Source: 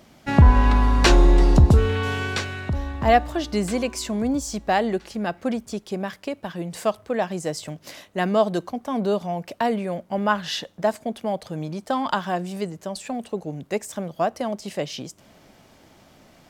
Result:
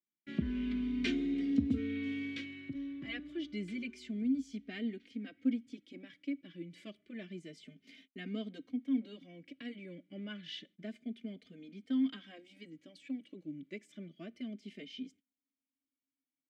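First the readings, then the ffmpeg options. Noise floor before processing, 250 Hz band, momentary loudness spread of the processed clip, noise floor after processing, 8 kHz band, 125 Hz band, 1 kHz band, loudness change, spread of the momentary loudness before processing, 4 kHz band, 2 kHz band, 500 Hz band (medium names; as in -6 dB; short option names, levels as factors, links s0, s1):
-54 dBFS, -9.5 dB, 18 LU, under -85 dBFS, under -25 dB, -26.0 dB, under -35 dB, -15.5 dB, 15 LU, -16.0 dB, -17.5 dB, -25.0 dB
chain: -filter_complex "[0:a]agate=range=0.02:threshold=0.00631:ratio=16:detection=peak,asplit=3[s0][s1][s2];[s0]bandpass=f=270:t=q:w=8,volume=1[s3];[s1]bandpass=f=2290:t=q:w=8,volume=0.501[s4];[s2]bandpass=f=3010:t=q:w=8,volume=0.355[s5];[s3][s4][s5]amix=inputs=3:normalize=0,asplit=2[s6][s7];[s7]adelay=3,afreqshift=0.29[s8];[s6][s8]amix=inputs=2:normalize=1"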